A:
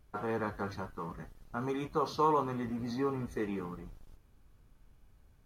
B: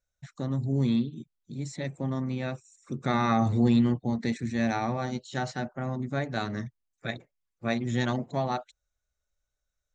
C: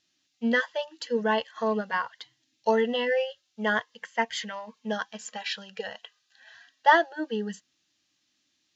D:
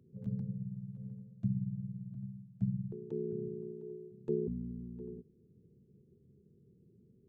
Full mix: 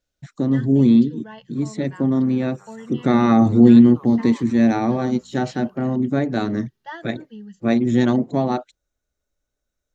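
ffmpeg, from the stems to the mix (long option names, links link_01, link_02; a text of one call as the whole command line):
ffmpeg -i stem1.wav -i stem2.wav -i stem3.wav -i stem4.wav -filter_complex "[0:a]highpass=710,aexciter=amount=1.9:drive=1.9:freq=11000,adelay=2000,volume=-11dB[link_01];[1:a]equalizer=frequency=300:width=0.9:gain=13,volume=2.5dB[link_02];[2:a]asubboost=boost=9.5:cutoff=170,volume=-14.5dB[link_03];[3:a]adelay=600,volume=-15dB[link_04];[link_01][link_02][link_03][link_04]amix=inputs=4:normalize=0" out.wav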